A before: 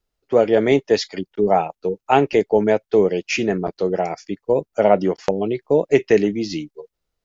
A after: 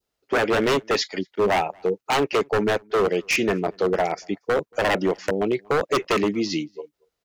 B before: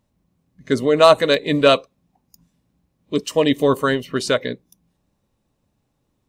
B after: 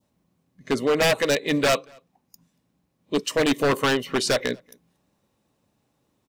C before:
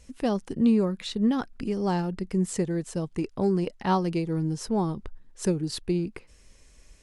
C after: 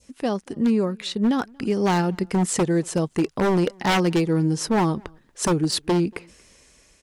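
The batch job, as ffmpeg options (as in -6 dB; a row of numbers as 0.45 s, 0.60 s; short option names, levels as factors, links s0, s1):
-filter_complex "[0:a]highpass=f=190:p=1,adynamicequalizer=threshold=0.0178:dfrequency=1800:dqfactor=1.1:tfrequency=1800:tqfactor=1.1:attack=5:release=100:ratio=0.375:range=1.5:mode=boostabove:tftype=bell,asplit=2[s0][s1];[s1]alimiter=limit=0.282:level=0:latency=1:release=466,volume=0.794[s2];[s0][s2]amix=inputs=2:normalize=0,dynaudnorm=f=670:g=5:m=4.73,aeval=exprs='0.266*(abs(mod(val(0)/0.266+3,4)-2)-1)':c=same,asplit=2[s3][s4];[s4]adelay=233.2,volume=0.0355,highshelf=f=4000:g=-5.25[s5];[s3][s5]amix=inputs=2:normalize=0,volume=0.75"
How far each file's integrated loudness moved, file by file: -4.0 LU, -5.0 LU, +4.5 LU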